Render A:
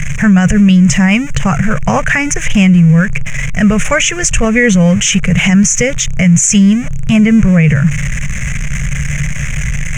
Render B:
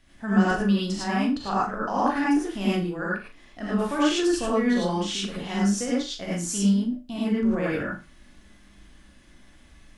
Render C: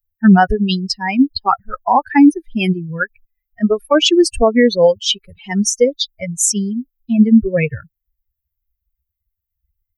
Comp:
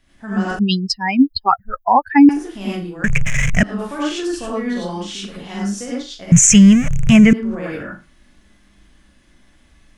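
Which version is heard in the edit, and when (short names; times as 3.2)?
B
0.59–2.29 from C
3.04–3.63 from A
6.32–7.33 from A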